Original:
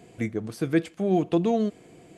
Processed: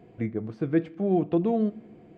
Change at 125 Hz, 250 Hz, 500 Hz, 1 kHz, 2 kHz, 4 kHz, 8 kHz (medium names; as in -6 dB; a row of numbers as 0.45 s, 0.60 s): -0.5 dB, -0.5 dB, -1.5 dB, -3.0 dB, -6.5 dB, under -10 dB, no reading